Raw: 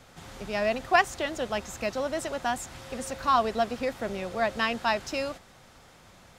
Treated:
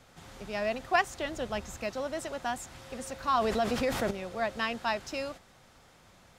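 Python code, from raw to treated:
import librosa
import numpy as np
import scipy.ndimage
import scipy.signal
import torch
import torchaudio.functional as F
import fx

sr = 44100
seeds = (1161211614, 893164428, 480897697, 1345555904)

y = fx.low_shelf(x, sr, hz=160.0, db=7.5, at=(1.21, 1.77))
y = fx.env_flatten(y, sr, amount_pct=70, at=(3.37, 4.11))
y = y * librosa.db_to_amplitude(-4.5)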